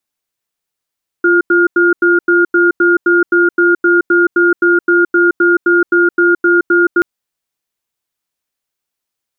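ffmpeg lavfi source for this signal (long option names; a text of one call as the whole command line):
ffmpeg -f lavfi -i "aevalsrc='0.335*(sin(2*PI*347*t)+sin(2*PI*1420*t))*clip(min(mod(t,0.26),0.17-mod(t,0.26))/0.005,0,1)':duration=5.78:sample_rate=44100" out.wav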